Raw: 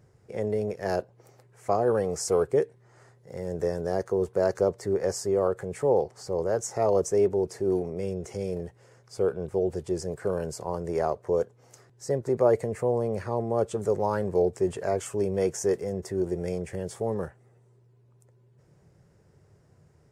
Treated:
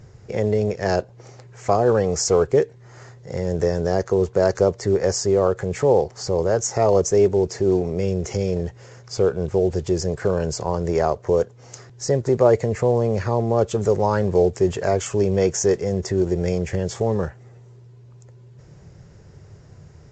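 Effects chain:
high-shelf EQ 2,100 Hz +5.5 dB
in parallel at −0.5 dB: downward compressor 10 to 1, threshold −35 dBFS, peak gain reduction 19.5 dB
on the sum: low-shelf EQ 110 Hz +10 dB
level +4 dB
mu-law 128 kbit/s 16,000 Hz

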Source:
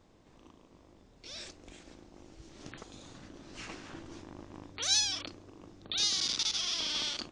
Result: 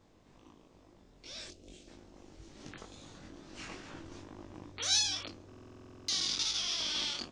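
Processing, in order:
0:01.48–0:01.88: flat-topped bell 1,300 Hz −12.5 dB
chorus effect 2.3 Hz, delay 19 ms, depth 3.5 ms
buffer that repeats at 0:05.48, samples 2,048, times 12
level +2 dB

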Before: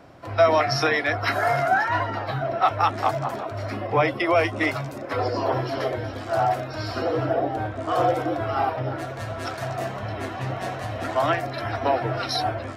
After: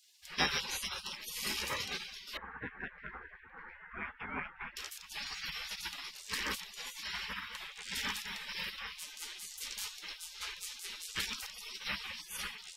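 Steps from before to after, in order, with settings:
0:02.37–0:04.77: low-pass filter 1,300 Hz 24 dB per octave
gate on every frequency bin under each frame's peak −30 dB weak
level +6.5 dB

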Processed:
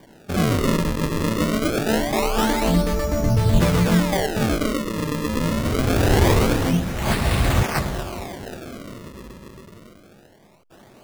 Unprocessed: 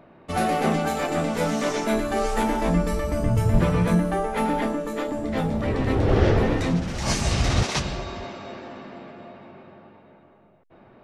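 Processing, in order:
in parallel at −7.5 dB: gain into a clipping stage and back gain 16 dB
on the sum: sample-and-hold swept by an LFO 33×, swing 160% 0.24 Hz

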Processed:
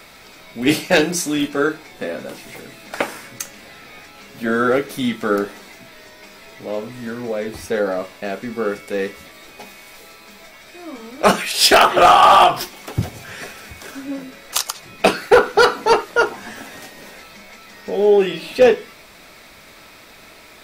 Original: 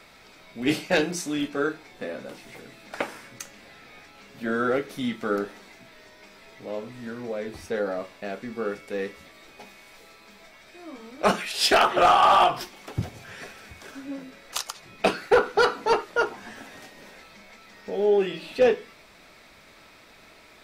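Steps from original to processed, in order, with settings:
high-shelf EQ 9,400 Hz +9.5 dB
level +7.5 dB

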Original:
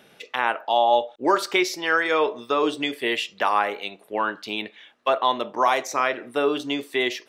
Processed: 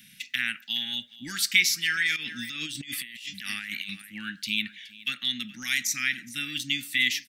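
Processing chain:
elliptic band-stop filter 220–1,900 Hz, stop band 40 dB
high-shelf EQ 6,300 Hz +10.5 dB
single-tap delay 420 ms −20.5 dB
0:02.16–0:04.02: compressor whose output falls as the input rises −39 dBFS, ratio −1
level +2 dB

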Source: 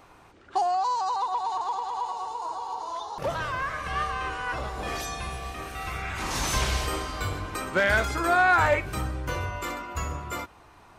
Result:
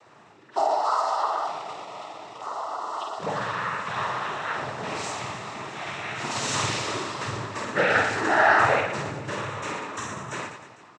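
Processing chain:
0:01.46–0:02.41: running median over 41 samples
cochlear-implant simulation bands 12
reverse bouncing-ball delay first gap 50 ms, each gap 1.3×, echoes 5

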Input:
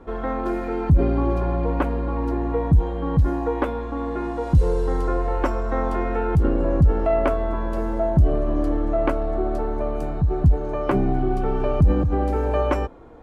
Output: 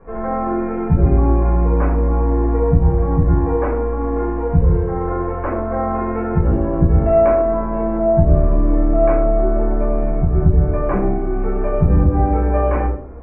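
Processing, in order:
Butterworth low-pass 2,400 Hz 48 dB per octave
in parallel at +1 dB: brickwall limiter −15.5 dBFS, peak gain reduction 7 dB
on the sum: rectangular room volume 660 cubic metres, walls furnished, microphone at 5.6 metres
level −11 dB

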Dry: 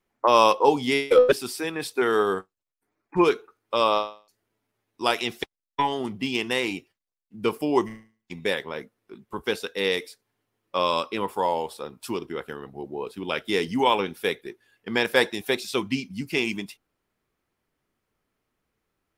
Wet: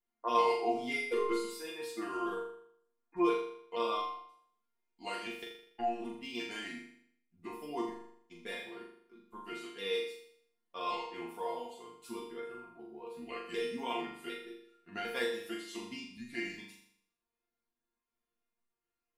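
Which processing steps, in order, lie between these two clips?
pitch shifter gated in a rhythm −3 semitones, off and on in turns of 376 ms
resonators tuned to a chord A#3 fifth, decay 0.24 s
on a send: flutter between parallel walls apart 7 metres, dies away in 0.65 s

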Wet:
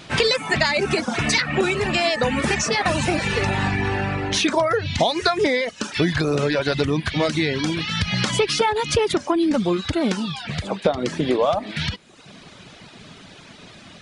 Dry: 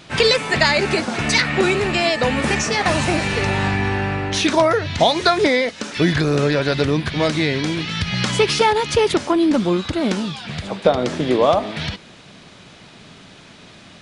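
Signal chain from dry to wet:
reverb reduction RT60 0.8 s
downward compressor 2.5 to 1, threshold −20 dBFS, peak gain reduction 7.5 dB
level +2 dB

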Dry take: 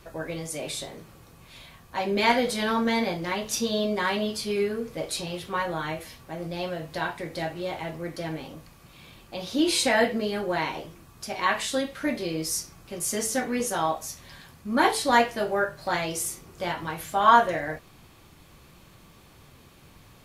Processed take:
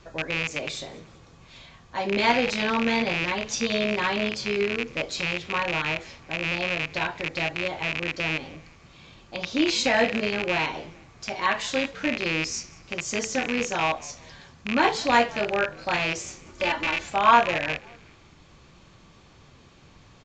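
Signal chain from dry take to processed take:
loose part that buzzes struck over −38 dBFS, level −15 dBFS
0:16.46–0:17.09: comb filter 3.4 ms, depth 87%
on a send: echo with shifted repeats 189 ms, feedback 46%, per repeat −79 Hz, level −22.5 dB
on the sum: downsampling to 16,000 Hz

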